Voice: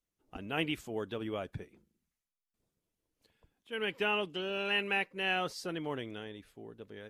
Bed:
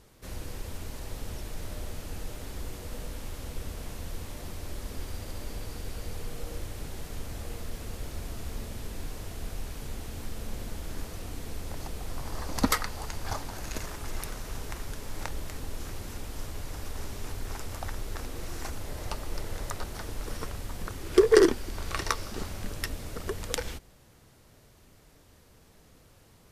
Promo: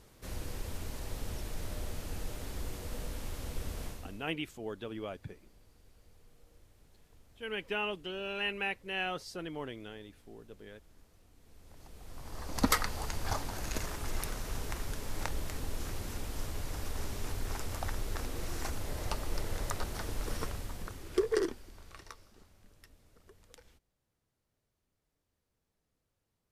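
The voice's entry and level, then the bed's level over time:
3.70 s, -3.0 dB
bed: 3.86 s -1.5 dB
4.37 s -24.5 dB
11.34 s -24.5 dB
12.79 s -0.5 dB
20.42 s -0.5 dB
22.47 s -25.5 dB

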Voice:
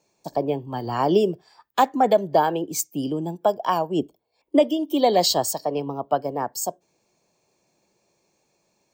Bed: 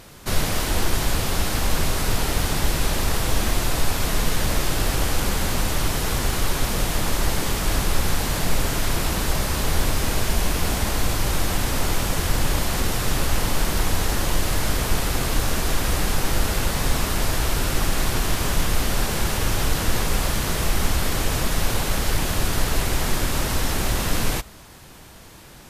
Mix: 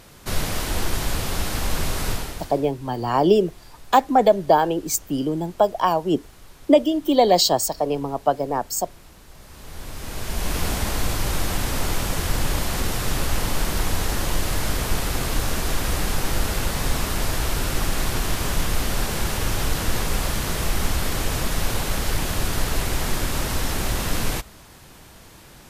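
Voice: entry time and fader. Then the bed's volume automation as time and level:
2.15 s, +2.5 dB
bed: 2.1 s -2.5 dB
2.72 s -24.5 dB
9.29 s -24.5 dB
10.56 s -1.5 dB

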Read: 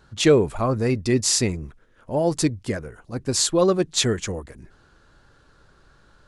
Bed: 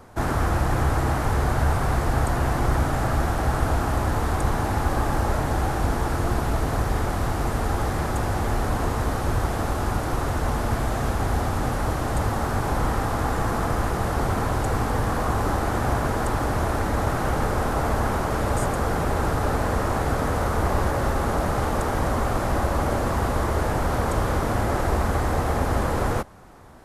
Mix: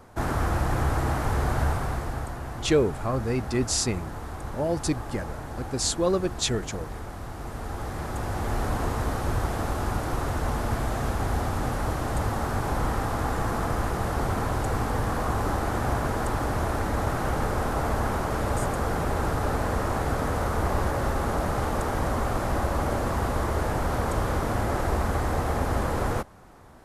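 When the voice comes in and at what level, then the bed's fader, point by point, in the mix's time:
2.45 s, -5.5 dB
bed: 1.63 s -3 dB
2.41 s -12.5 dB
7.28 s -12.5 dB
8.62 s -3 dB

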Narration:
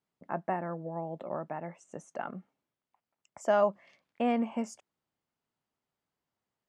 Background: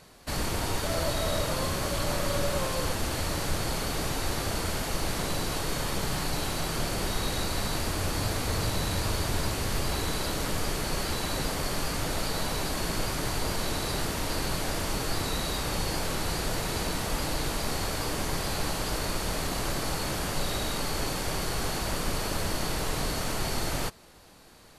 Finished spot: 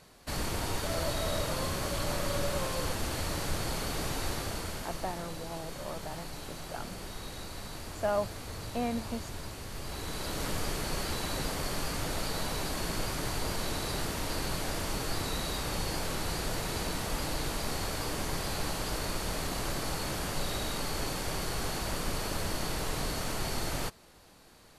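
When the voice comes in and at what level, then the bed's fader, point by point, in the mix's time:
4.55 s, -4.5 dB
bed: 4.26 s -3.5 dB
5.26 s -12 dB
9.72 s -12 dB
10.44 s -3.5 dB

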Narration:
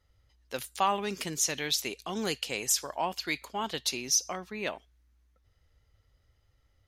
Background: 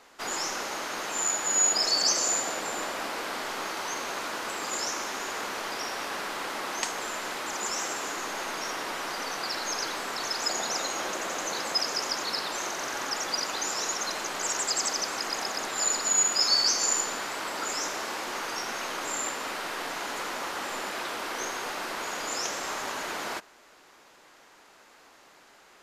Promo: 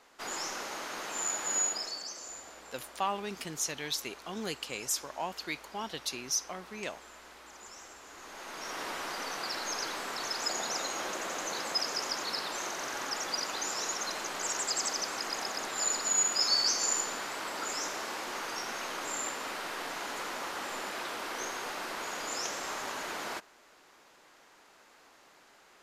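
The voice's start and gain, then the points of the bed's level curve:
2.20 s, -5.0 dB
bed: 1.57 s -5.5 dB
2.09 s -18 dB
8.04 s -18 dB
8.82 s -4 dB

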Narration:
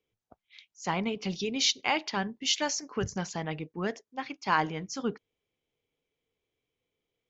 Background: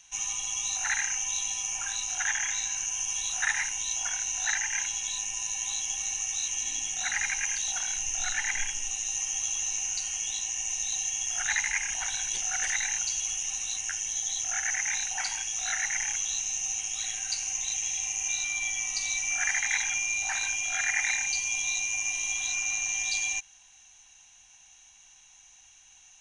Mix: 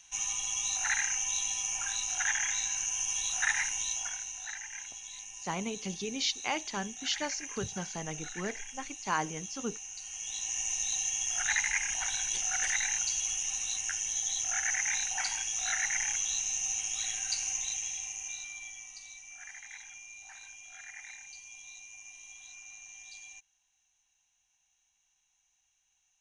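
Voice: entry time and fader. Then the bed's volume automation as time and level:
4.60 s, -5.0 dB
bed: 3.83 s -1.5 dB
4.48 s -12.5 dB
9.95 s -12.5 dB
10.55 s -1.5 dB
17.49 s -1.5 dB
19.22 s -19.5 dB

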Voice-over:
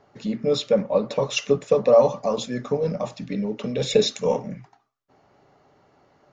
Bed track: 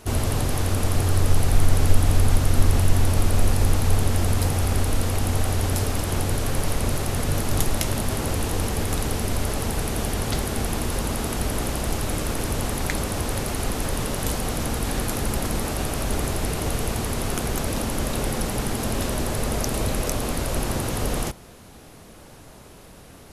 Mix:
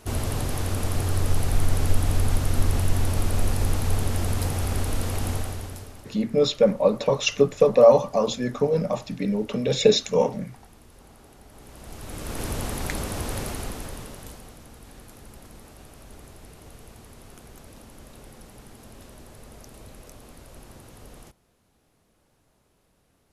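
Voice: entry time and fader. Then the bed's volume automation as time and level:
5.90 s, +1.5 dB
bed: 5.31 s -4 dB
6.21 s -26 dB
11.45 s -26 dB
12.43 s -4 dB
13.45 s -4 dB
14.62 s -21 dB

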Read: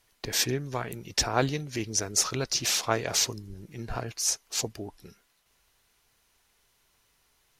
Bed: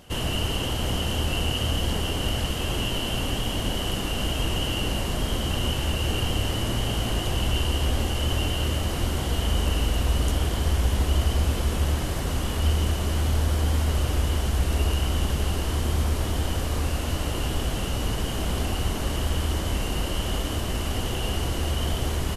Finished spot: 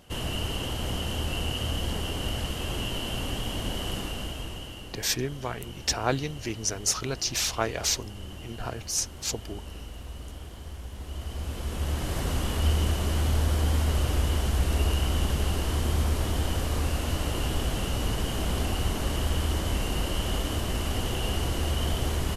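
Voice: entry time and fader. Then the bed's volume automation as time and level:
4.70 s, -1.0 dB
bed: 3.98 s -4.5 dB
4.94 s -17 dB
10.92 s -17 dB
12.19 s -1.5 dB

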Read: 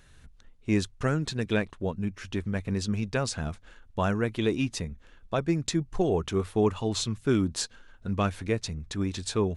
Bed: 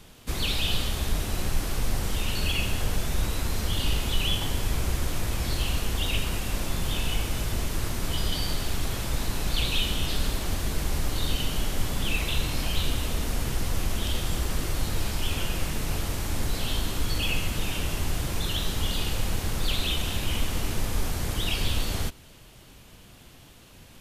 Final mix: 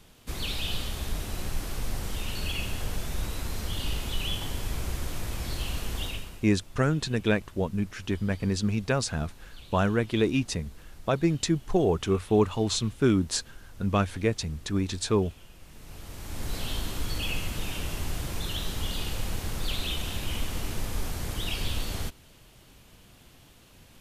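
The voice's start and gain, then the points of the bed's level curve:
5.75 s, +2.0 dB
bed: 6.04 s -5 dB
6.52 s -22.5 dB
15.59 s -22.5 dB
16.54 s -4 dB

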